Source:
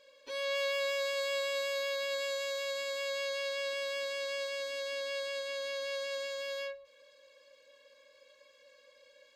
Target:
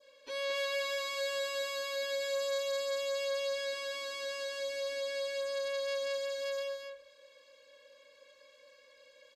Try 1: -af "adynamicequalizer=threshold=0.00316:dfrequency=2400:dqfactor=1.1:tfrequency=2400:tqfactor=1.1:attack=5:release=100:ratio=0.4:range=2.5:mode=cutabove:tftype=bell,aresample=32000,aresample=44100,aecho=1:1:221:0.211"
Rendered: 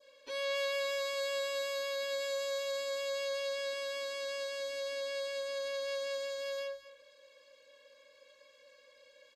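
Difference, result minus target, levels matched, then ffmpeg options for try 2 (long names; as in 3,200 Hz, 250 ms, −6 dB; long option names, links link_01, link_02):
echo-to-direct −9 dB
-af "adynamicequalizer=threshold=0.00316:dfrequency=2400:dqfactor=1.1:tfrequency=2400:tqfactor=1.1:attack=5:release=100:ratio=0.4:range=2.5:mode=cutabove:tftype=bell,aresample=32000,aresample=44100,aecho=1:1:221:0.596"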